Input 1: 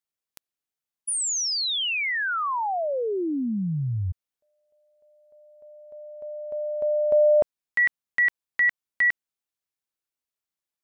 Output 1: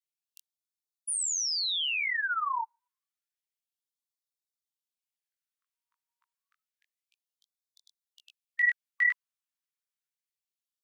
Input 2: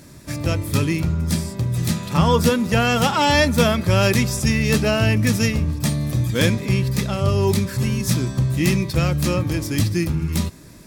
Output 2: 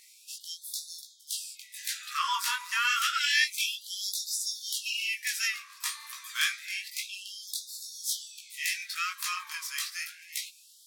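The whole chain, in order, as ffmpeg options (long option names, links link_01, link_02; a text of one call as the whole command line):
ffmpeg -i in.wav -af "flanger=delay=16:depth=6.5:speed=0.97,afftfilt=real='re*gte(b*sr/1024,900*pow(3500/900,0.5+0.5*sin(2*PI*0.29*pts/sr)))':imag='im*gte(b*sr/1024,900*pow(3500/900,0.5+0.5*sin(2*PI*0.29*pts/sr)))':win_size=1024:overlap=0.75,volume=-1dB" out.wav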